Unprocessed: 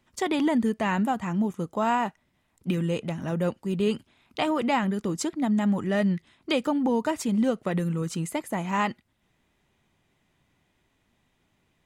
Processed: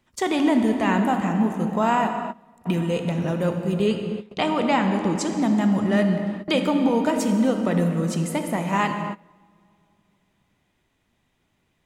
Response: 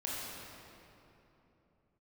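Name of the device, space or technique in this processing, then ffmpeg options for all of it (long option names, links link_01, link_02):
keyed gated reverb: -filter_complex "[0:a]asettb=1/sr,asplit=3[link_01][link_02][link_03];[link_01]atrim=end=3.864[link_04];[link_02]atrim=start=3.86:end=5.34,asetpts=PTS-STARTPTS,afade=type=in:duration=0.004:curve=qsin,afade=type=out:start_time=1.476:duration=0.004:curve=qsin,lowpass=8500[link_05];[link_03]atrim=start=5.336[link_06];[link_04][link_05]acrossfade=duration=0.004:curve1=hsin:curve2=qsin[link_07];[link_07][link_06]acrossfade=duration=0.004:curve1=qsin:curve2=hsin,asplit=3[link_08][link_09][link_10];[1:a]atrim=start_sample=2205[link_11];[link_09][link_11]afir=irnorm=-1:irlink=0[link_12];[link_10]apad=whole_len=522918[link_13];[link_12][link_13]sidechaingate=range=-21dB:threshold=-57dB:ratio=16:detection=peak,volume=-4dB[link_14];[link_08][link_14]amix=inputs=2:normalize=0"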